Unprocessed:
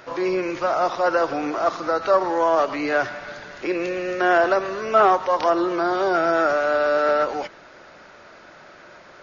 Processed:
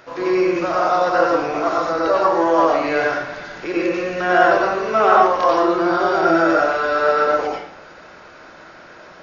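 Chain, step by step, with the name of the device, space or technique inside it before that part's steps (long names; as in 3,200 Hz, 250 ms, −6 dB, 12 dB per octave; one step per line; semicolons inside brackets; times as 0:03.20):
bathroom (convolution reverb RT60 0.70 s, pre-delay 85 ms, DRR −4.5 dB)
level −1.5 dB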